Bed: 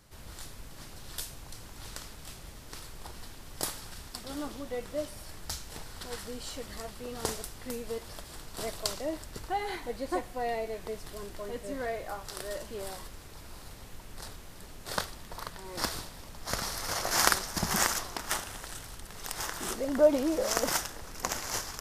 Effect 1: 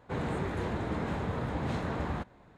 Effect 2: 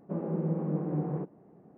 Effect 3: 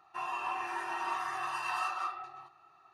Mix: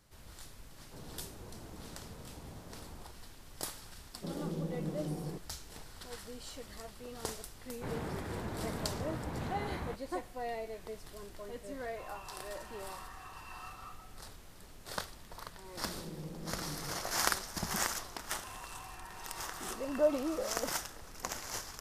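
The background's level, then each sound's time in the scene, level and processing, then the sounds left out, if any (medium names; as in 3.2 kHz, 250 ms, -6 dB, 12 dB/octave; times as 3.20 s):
bed -6.5 dB
0.82 s: add 1 -17 dB + peaking EQ 2.6 kHz -12 dB 1.4 oct
4.13 s: add 2 -7.5 dB
7.72 s: add 1 -6.5 dB
11.82 s: add 3 -14.5 dB
15.74 s: add 2 -14 dB + vibrato 1.6 Hz 70 cents
18.29 s: add 3 -5.5 dB + compression 2:1, threshold -48 dBFS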